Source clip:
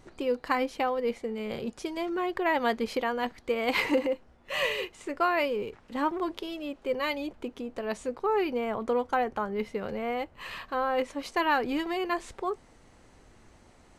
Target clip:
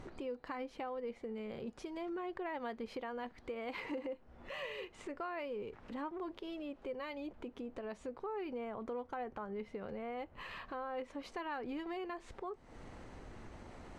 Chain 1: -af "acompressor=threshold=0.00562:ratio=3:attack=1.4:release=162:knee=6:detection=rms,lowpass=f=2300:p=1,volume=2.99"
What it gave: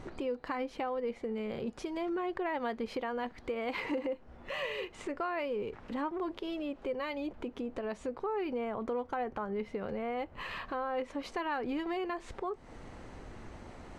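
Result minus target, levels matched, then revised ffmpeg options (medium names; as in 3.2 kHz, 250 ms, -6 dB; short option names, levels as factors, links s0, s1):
compression: peak gain reduction -6.5 dB
-af "acompressor=threshold=0.00178:ratio=3:attack=1.4:release=162:knee=6:detection=rms,lowpass=f=2300:p=1,volume=2.99"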